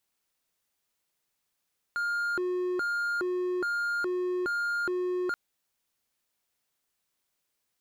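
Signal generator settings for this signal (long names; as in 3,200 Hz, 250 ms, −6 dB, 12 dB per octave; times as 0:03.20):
siren hi-lo 362–1,410 Hz 1.2 per second triangle −25 dBFS 3.38 s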